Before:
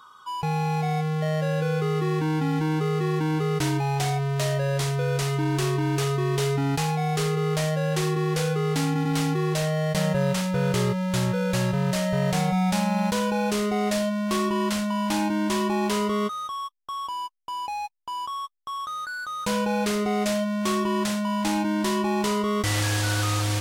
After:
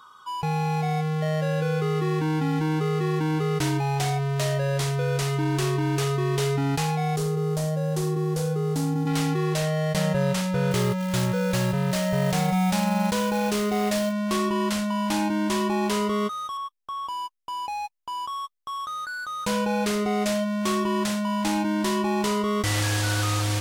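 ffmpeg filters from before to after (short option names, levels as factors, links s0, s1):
-filter_complex "[0:a]asettb=1/sr,asplit=3[s0][s1][s2];[s0]atrim=end=7.164[s3];[s1]atrim=start=7.16:end=9.07,asetpts=PTS-STARTPTS,afade=t=in:d=0.004:c=qsin,afade=t=out:st=1.906:d=0.004:c=qsin,equalizer=f=2300:t=o:w=2:g=-13[s4];[s2]atrim=start=9.066[s5];[s3][s4]acrossfade=d=0.004:c1=hsin:c2=qsin[s6];[s6][s5]acrossfade=d=0.004:c1=qsin:c2=hsin,asettb=1/sr,asplit=3[s7][s8][s9];[s7]atrim=end=10.714[s10];[s8]atrim=start=10.71:end=14.13,asetpts=PTS-STARTPTS,afade=t=in:d=0.004:c=qsin,afade=t=out:st=3.416:d=0.004:c=qsin,acrusher=bits=4:mode=log:mix=0:aa=0.000001[s11];[s9]atrim=start=14.126[s12];[s10][s11]acrossfade=d=0.004:c1=hsin:c2=qsin[s13];[s13][s12]acrossfade=d=0.004:c1=qsin:c2=hsin,asettb=1/sr,asplit=3[s14][s15][s16];[s14]atrim=end=16.574[s17];[s15]atrim=start=16.57:end=17.08,asetpts=PTS-STARTPTS,afade=t=in:d=0.004:c=qsin,afade=t=out:st=0.506:d=0.004:c=qsin,acrossover=split=3100[s18][s19];[s19]acompressor=threshold=0.00224:ratio=4:attack=1:release=60[s20];[s18][s20]amix=inputs=2:normalize=0[s21];[s16]atrim=start=17.076[s22];[s17][s21]acrossfade=d=0.004:c1=hsin:c2=qsin[s23];[s23][s22]acrossfade=d=0.004:c1=qsin:c2=hsin"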